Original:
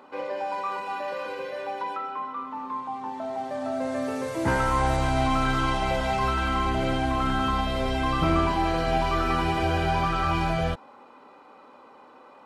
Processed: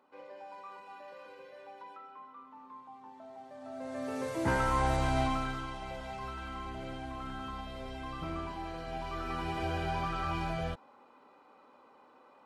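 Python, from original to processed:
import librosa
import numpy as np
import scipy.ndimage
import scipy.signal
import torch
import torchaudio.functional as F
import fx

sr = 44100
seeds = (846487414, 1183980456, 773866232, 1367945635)

y = fx.gain(x, sr, db=fx.line((3.56, -17.5), (4.22, -5.5), (5.2, -5.5), (5.68, -16.0), (8.87, -16.0), (9.64, -9.5)))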